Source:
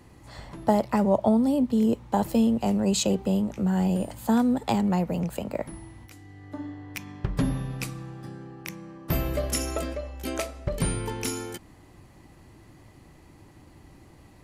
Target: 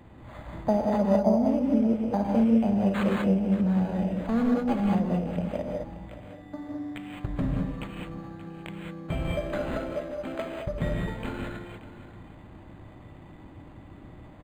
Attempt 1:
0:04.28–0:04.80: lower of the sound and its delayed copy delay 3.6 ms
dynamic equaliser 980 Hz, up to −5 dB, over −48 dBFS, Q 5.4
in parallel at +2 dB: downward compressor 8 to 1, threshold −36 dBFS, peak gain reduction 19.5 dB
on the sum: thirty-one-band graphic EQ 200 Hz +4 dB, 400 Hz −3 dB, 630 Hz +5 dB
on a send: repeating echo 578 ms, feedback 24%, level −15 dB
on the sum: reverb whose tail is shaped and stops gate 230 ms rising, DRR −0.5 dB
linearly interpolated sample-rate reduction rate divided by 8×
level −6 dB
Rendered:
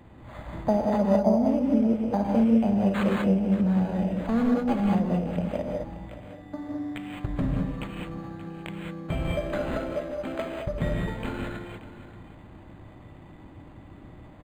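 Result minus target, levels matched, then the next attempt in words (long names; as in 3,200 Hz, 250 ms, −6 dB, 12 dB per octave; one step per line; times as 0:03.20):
downward compressor: peak gain reduction −7 dB
0:04.28–0:04.80: lower of the sound and its delayed copy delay 3.6 ms
dynamic equaliser 980 Hz, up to −5 dB, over −48 dBFS, Q 5.4
in parallel at +2 dB: downward compressor 8 to 1, threshold −44 dBFS, peak gain reduction 26.5 dB
on the sum: thirty-one-band graphic EQ 200 Hz +4 dB, 400 Hz −3 dB, 630 Hz +5 dB
on a send: repeating echo 578 ms, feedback 24%, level −15 dB
on the sum: reverb whose tail is shaped and stops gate 230 ms rising, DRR −0.5 dB
linearly interpolated sample-rate reduction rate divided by 8×
level −6 dB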